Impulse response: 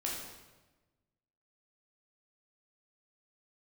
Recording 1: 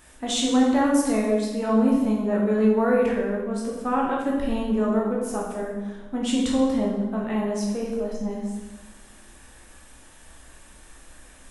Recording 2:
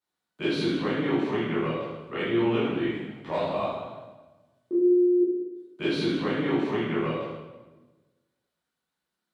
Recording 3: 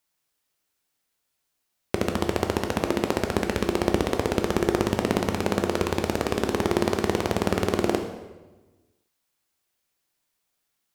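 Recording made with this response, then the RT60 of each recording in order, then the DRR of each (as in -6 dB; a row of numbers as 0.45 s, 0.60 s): 1; 1.2 s, 1.2 s, 1.2 s; -3.5 dB, -10.0 dB, 4.5 dB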